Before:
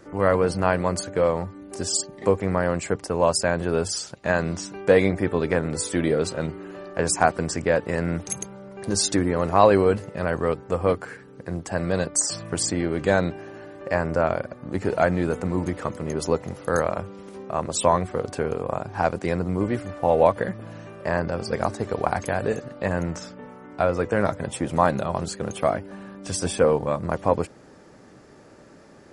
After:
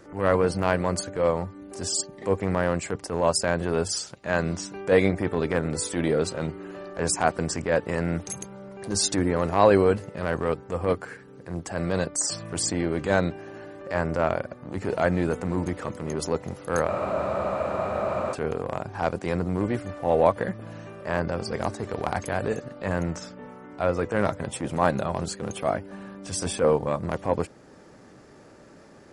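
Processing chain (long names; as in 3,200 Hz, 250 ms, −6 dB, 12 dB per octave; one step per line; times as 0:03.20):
transient designer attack −8 dB, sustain −2 dB
frozen spectrum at 0:16.90, 1.44 s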